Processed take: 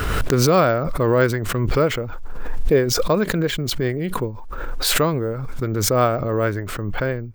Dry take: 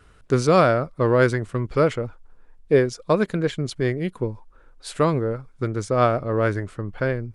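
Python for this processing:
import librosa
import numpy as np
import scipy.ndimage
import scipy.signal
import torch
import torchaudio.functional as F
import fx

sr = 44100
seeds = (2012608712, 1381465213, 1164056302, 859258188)

y = np.repeat(x[::2], 2)[:len(x)]
y = fx.pre_swell(y, sr, db_per_s=25.0)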